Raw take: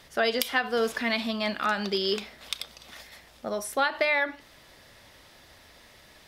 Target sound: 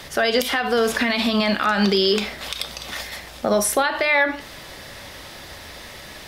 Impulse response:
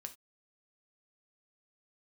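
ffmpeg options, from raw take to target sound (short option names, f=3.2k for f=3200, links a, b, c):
-filter_complex "[0:a]acrossover=split=130[a][b];[b]acompressor=threshold=-27dB:ratio=6[c];[a][c]amix=inputs=2:normalize=0,alimiter=limit=-24dB:level=0:latency=1:release=45,asplit=2[d][e];[1:a]atrim=start_sample=2205[f];[e][f]afir=irnorm=-1:irlink=0,volume=6dB[g];[d][g]amix=inputs=2:normalize=0,volume=8.5dB"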